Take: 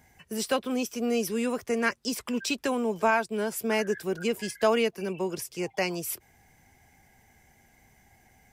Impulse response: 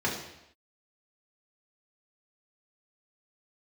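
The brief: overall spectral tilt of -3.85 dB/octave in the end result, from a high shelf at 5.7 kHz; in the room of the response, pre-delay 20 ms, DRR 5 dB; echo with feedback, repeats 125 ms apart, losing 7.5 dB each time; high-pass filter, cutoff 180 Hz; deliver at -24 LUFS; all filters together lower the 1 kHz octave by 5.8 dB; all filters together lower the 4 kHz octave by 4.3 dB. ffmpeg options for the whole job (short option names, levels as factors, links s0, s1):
-filter_complex "[0:a]highpass=180,equalizer=f=1000:t=o:g=-7.5,equalizer=f=4000:t=o:g=-7.5,highshelf=f=5700:g=3,aecho=1:1:125|250|375|500|625:0.422|0.177|0.0744|0.0312|0.0131,asplit=2[s0][s1];[1:a]atrim=start_sample=2205,adelay=20[s2];[s1][s2]afir=irnorm=-1:irlink=0,volume=0.178[s3];[s0][s3]amix=inputs=2:normalize=0,volume=1.58"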